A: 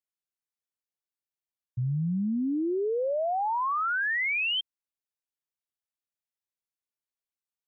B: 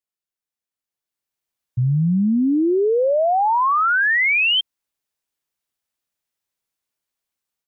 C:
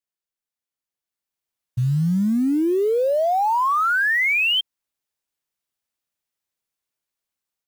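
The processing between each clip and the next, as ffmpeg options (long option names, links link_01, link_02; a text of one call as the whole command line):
ffmpeg -i in.wav -af "dynaudnorm=framelen=760:gausssize=3:maxgain=9.5dB,volume=1dB" out.wav
ffmpeg -i in.wav -af "acrusher=bits=7:mode=log:mix=0:aa=0.000001,volume=-2dB" out.wav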